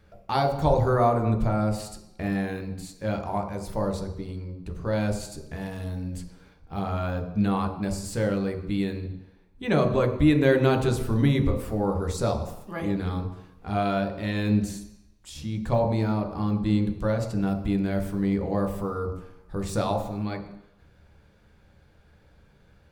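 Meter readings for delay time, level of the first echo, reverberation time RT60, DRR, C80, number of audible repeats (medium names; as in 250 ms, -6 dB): no echo, no echo, 0.85 s, 3.0 dB, 11.0 dB, no echo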